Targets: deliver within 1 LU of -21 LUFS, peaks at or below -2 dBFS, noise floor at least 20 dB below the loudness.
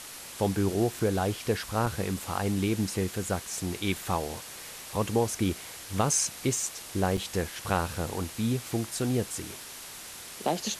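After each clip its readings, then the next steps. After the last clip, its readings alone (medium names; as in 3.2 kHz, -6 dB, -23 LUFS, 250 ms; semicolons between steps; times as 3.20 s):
dropouts 2; longest dropout 4.6 ms; noise floor -44 dBFS; noise floor target -50 dBFS; loudness -30.0 LUFS; peak level -12.5 dBFS; loudness target -21.0 LUFS
-> interpolate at 1.86/7.17 s, 4.6 ms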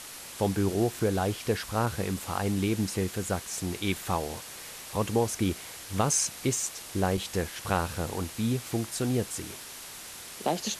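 dropouts 0; noise floor -44 dBFS; noise floor target -50 dBFS
-> noise print and reduce 6 dB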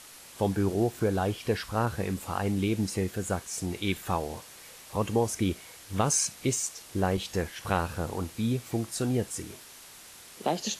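noise floor -49 dBFS; noise floor target -50 dBFS
-> noise print and reduce 6 dB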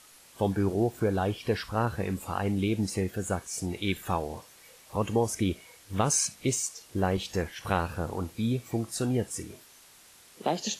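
noise floor -55 dBFS; loudness -30.0 LUFS; peak level -12.5 dBFS; loudness target -21.0 LUFS
-> trim +9 dB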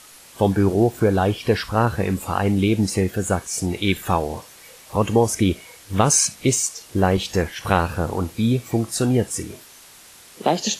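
loudness -21.0 LUFS; peak level -3.5 dBFS; noise floor -46 dBFS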